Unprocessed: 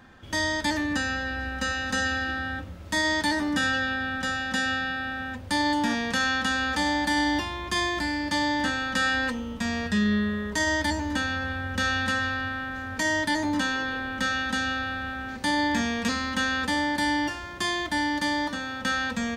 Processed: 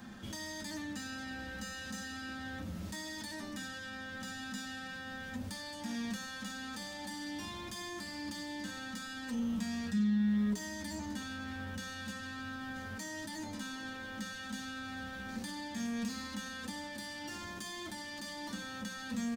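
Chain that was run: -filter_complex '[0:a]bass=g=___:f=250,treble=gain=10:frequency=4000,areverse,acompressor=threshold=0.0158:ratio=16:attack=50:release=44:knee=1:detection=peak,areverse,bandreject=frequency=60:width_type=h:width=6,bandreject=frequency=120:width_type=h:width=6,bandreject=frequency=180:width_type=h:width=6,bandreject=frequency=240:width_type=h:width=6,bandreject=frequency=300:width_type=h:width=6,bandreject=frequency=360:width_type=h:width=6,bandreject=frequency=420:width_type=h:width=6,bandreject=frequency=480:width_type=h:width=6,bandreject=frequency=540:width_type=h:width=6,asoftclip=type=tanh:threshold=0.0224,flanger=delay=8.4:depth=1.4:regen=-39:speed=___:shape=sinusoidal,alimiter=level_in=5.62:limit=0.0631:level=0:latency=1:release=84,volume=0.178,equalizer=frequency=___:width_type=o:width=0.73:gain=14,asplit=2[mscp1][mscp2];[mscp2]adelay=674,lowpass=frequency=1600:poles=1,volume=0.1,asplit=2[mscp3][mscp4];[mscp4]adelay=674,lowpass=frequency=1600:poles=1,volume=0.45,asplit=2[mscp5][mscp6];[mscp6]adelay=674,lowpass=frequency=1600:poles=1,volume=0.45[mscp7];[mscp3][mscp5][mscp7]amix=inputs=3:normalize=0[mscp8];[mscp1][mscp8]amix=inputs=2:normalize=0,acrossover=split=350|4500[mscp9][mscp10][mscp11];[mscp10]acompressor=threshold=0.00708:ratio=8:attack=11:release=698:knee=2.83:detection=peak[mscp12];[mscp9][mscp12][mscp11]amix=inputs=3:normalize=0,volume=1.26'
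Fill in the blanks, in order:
-2, 0.88, 200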